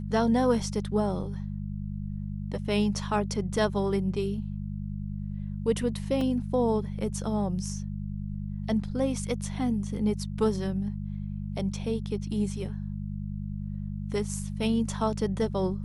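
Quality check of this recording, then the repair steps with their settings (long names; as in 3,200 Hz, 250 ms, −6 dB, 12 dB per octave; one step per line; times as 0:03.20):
mains hum 50 Hz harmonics 4 −34 dBFS
0:06.21: drop-out 2.8 ms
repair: hum removal 50 Hz, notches 4
repair the gap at 0:06.21, 2.8 ms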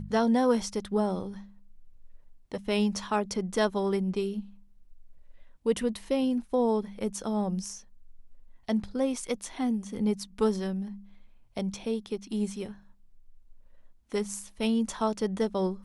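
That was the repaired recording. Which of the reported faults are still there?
none of them is left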